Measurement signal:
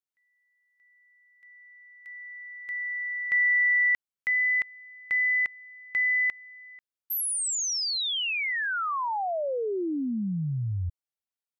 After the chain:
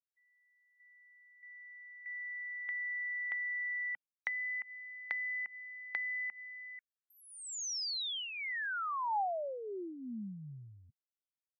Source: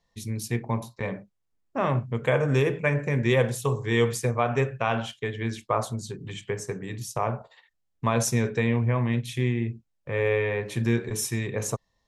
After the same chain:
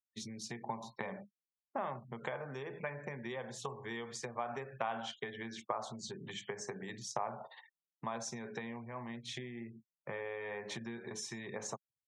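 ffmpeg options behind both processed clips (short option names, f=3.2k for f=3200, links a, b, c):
-af "acompressor=threshold=-37dB:ratio=10:attack=18:release=191:knee=1:detection=peak,afftfilt=real='re*gte(hypot(re,im),0.00141)':imag='im*gte(hypot(re,im),0.00141)':win_size=1024:overlap=0.75,highpass=f=170:w=0.5412,highpass=f=170:w=1.3066,equalizer=f=170:t=q:w=4:g=-6,equalizer=f=290:t=q:w=4:g=-10,equalizer=f=470:t=q:w=4:g=-6,equalizer=f=820:t=q:w=4:g=6,equalizer=f=2.6k:t=q:w=4:g=-7,lowpass=f=6.7k:w=0.5412,lowpass=f=6.7k:w=1.3066,volume=1dB"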